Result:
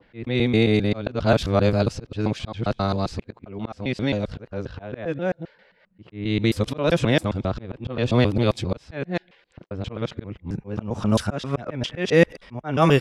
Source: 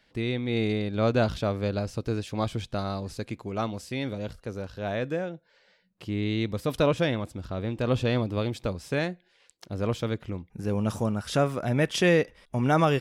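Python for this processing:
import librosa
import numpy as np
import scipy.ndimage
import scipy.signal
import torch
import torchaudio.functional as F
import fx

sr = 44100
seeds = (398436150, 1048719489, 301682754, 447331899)

y = fx.local_reverse(x, sr, ms=133.0)
y = fx.auto_swell(y, sr, attack_ms=295.0)
y = fx.env_lowpass(y, sr, base_hz=2100.0, full_db=-23.0)
y = F.gain(torch.from_numpy(y), 8.5).numpy()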